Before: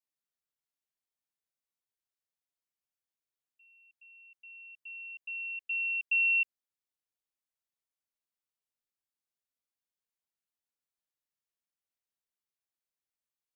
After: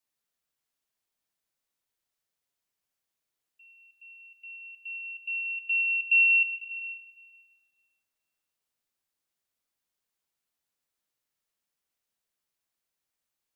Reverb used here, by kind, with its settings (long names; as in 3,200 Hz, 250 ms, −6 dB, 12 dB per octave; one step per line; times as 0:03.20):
comb and all-pass reverb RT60 1.9 s, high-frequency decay 0.75×, pre-delay 75 ms, DRR 9 dB
level +7 dB